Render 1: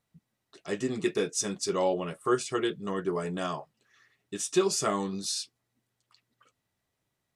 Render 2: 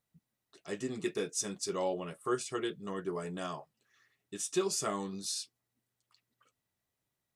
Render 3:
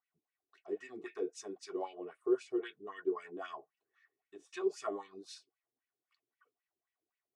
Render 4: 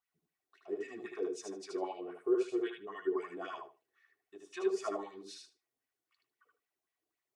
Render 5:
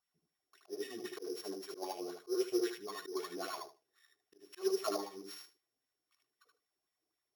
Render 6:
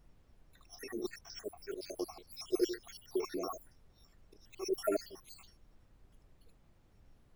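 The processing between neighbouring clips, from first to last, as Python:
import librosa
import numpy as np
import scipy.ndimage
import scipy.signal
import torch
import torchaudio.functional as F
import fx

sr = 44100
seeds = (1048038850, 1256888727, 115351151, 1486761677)

y1 = fx.high_shelf(x, sr, hz=10000.0, db=8.5)
y1 = y1 * librosa.db_to_amplitude(-6.5)
y2 = y1 + 0.56 * np.pad(y1, (int(2.7 * sr / 1000.0), 0))[:len(y1)]
y2 = fx.wah_lfo(y2, sr, hz=3.8, low_hz=340.0, high_hz=2400.0, q=3.4)
y2 = y2 * librosa.db_to_amplitude(2.0)
y3 = fx.echo_feedback(y2, sr, ms=76, feedback_pct=16, wet_db=-3.5)
y4 = np.r_[np.sort(y3[:len(y3) // 8 * 8].reshape(-1, 8), axis=1).ravel(), y3[len(y3) // 8 * 8:]]
y4 = fx.auto_swell(y4, sr, attack_ms=170.0)
y4 = y4 * librosa.db_to_amplitude(1.0)
y5 = fx.spec_dropout(y4, sr, seeds[0], share_pct=73)
y5 = fx.dmg_noise_colour(y5, sr, seeds[1], colour='brown', level_db=-67.0)
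y5 = y5 * librosa.db_to_amplitude(6.0)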